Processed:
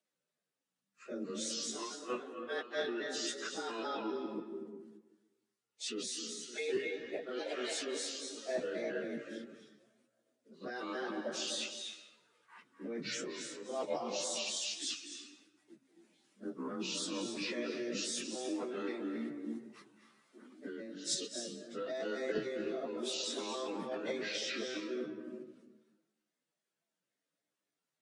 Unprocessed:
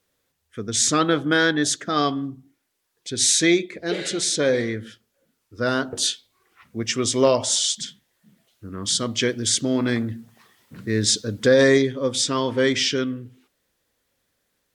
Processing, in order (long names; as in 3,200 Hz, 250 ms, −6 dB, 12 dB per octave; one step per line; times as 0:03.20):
pitch shifter gated in a rhythm −5 semitones, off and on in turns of 72 ms
on a send: feedback echo with a low-pass in the loop 94 ms, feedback 25%, low-pass 4,400 Hz, level −19.5 dB
on the sum: downsampling to 22,050 Hz
output level in coarse steps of 18 dB
frequency shifter +120 Hz
reversed playback
downward compressor 20 to 1, threshold −33 dBFS, peak gain reduction 18.5 dB
reversed playback
dense smooth reverb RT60 0.54 s, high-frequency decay 0.6×, pre-delay 115 ms, DRR 6 dB
time stretch by phase vocoder 1.9×
level +1 dB